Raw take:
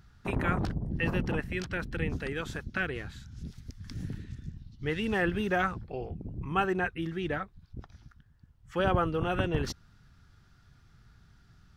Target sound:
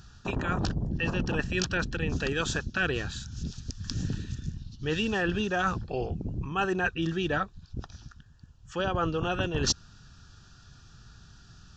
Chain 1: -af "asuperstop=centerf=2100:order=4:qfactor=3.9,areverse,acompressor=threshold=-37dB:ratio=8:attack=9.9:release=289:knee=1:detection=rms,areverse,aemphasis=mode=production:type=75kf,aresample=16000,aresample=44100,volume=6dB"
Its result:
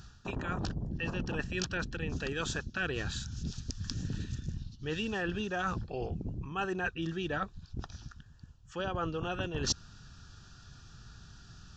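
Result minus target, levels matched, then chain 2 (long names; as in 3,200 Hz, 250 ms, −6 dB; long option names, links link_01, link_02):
downward compressor: peak gain reduction +6 dB
-af "asuperstop=centerf=2100:order=4:qfactor=3.9,areverse,acompressor=threshold=-30dB:ratio=8:attack=9.9:release=289:knee=1:detection=rms,areverse,aemphasis=mode=production:type=75kf,aresample=16000,aresample=44100,volume=6dB"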